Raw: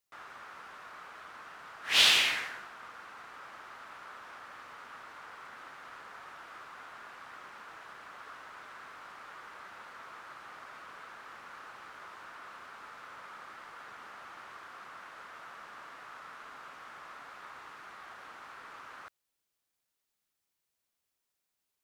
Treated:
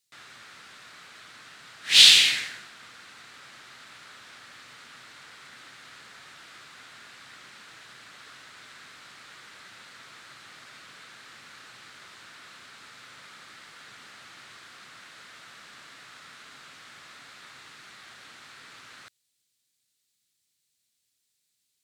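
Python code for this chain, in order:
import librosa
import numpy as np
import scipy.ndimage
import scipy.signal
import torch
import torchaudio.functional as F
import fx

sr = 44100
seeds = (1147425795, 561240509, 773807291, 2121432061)

y = fx.graphic_eq_10(x, sr, hz=(125, 250, 1000, 2000, 4000, 8000, 16000), db=(11, 5, -6, 5, 12, 11, 6))
y = F.gain(torch.from_numpy(y), -3.5).numpy()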